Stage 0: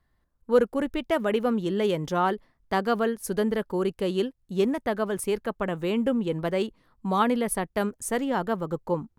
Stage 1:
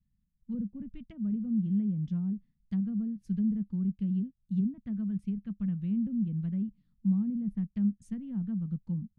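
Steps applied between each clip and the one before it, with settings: low-pass that closes with the level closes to 530 Hz, closed at -20 dBFS; FFT filter 100 Hz 0 dB, 200 Hz +10 dB, 370 Hz -24 dB, 580 Hz -30 dB, 980 Hz -28 dB, 2.8 kHz -12 dB; trim -5.5 dB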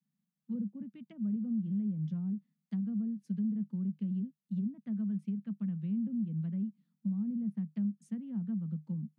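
compression, threshold -29 dBFS, peak gain reduction 7 dB; rippled Chebyshev high-pass 150 Hz, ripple 3 dB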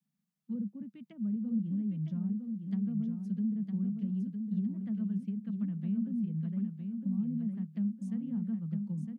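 feedback delay 959 ms, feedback 34%, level -5.5 dB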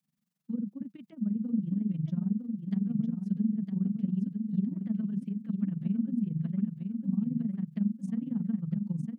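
AM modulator 22 Hz, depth 70%; trim +6.5 dB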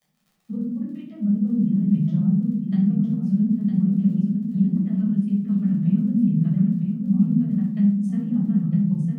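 crackle 30 per s -52 dBFS; reverberation RT60 0.60 s, pre-delay 8 ms, DRR -5 dB

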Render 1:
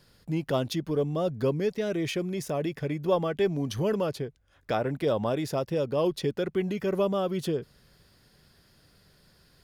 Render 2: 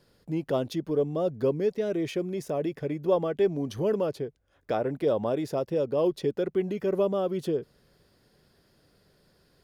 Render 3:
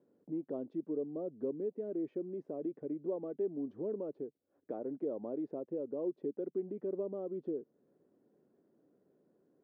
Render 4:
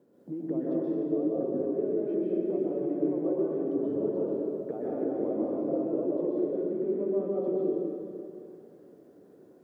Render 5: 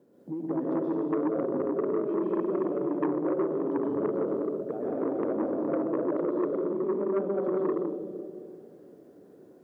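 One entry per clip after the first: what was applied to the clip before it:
peaking EQ 430 Hz +8 dB 2.1 oct; trim -6 dB
compression 1.5:1, threshold -43 dBFS, peak gain reduction 9 dB; ladder band-pass 340 Hz, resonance 40%; trim +6.5 dB
compression 4:1, threshold -42 dBFS, peak gain reduction 10 dB; plate-style reverb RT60 2.7 s, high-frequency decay 0.9×, pre-delay 110 ms, DRR -7 dB; trim +7.5 dB
transformer saturation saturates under 680 Hz; trim +2 dB

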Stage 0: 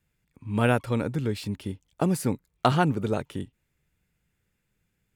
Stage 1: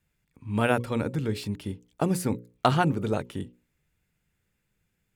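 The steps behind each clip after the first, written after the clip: hum notches 60/120/180/240/300/360/420/480/540 Hz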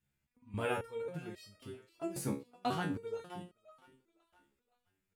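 thinning echo 517 ms, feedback 36%, high-pass 360 Hz, level -17 dB; resonator arpeggio 3.7 Hz 69–630 Hz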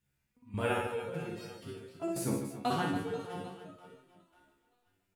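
reverse bouncing-ball echo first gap 60 ms, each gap 1.5×, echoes 5; trim +2 dB

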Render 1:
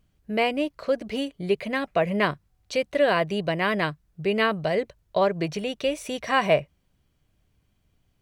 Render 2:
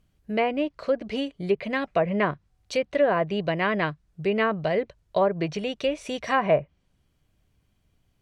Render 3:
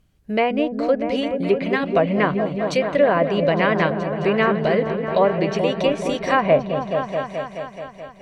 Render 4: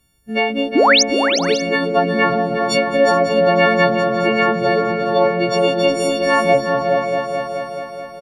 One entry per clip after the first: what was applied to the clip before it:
low-pass that closes with the level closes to 1.4 kHz, closed at -17 dBFS
delay with an opening low-pass 214 ms, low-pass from 400 Hz, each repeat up 1 oct, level -3 dB; trim +4.5 dB
partials quantised in pitch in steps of 4 st; painted sound rise, 0.75–1.03 s, 240–6900 Hz -12 dBFS; multi-tap echo 361/424/547/588 ms -7.5/-18.5/-14/-17.5 dB

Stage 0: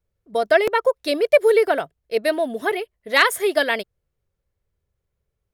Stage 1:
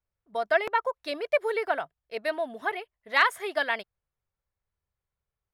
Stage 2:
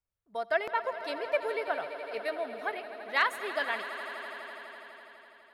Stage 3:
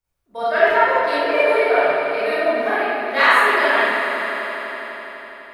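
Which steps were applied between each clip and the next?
low-pass 2.4 kHz 6 dB/octave; resonant low shelf 640 Hz -7.5 dB, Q 1.5; trim -4.5 dB
echo with a slow build-up 83 ms, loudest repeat 5, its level -16 dB; trim -5 dB
reverberation RT60 2.1 s, pre-delay 24 ms, DRR -12.5 dB; trim +3 dB

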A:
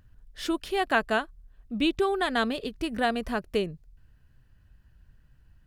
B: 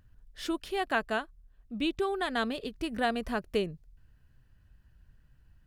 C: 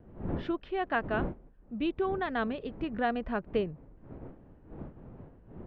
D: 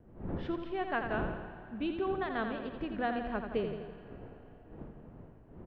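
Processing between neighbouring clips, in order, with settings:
gain riding 2 s; trim -3.5 dB
wind noise 310 Hz -43 dBFS; Bessel low-pass 2 kHz, order 4; vibrato 2.3 Hz 47 cents
feedback delay 84 ms, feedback 59%, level -7 dB; reverberation RT60 4.5 s, pre-delay 113 ms, DRR 15 dB; trim -4 dB

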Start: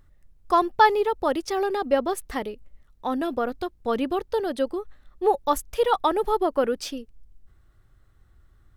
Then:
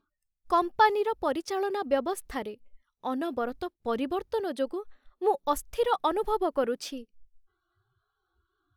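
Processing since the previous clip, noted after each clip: spectral noise reduction 27 dB; trim -4.5 dB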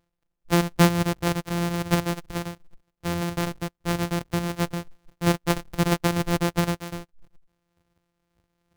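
sorted samples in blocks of 256 samples; trim +3.5 dB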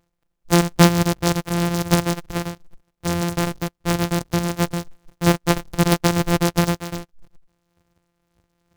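delay time shaken by noise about 4.1 kHz, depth 0.058 ms; trim +5 dB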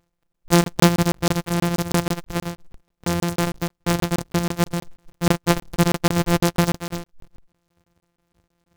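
crackling interface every 0.16 s, samples 1024, zero, from 0.32 s

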